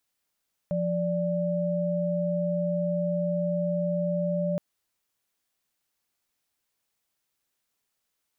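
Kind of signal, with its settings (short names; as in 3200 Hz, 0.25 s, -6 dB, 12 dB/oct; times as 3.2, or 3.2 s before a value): chord F3/D5 sine, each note -27 dBFS 3.87 s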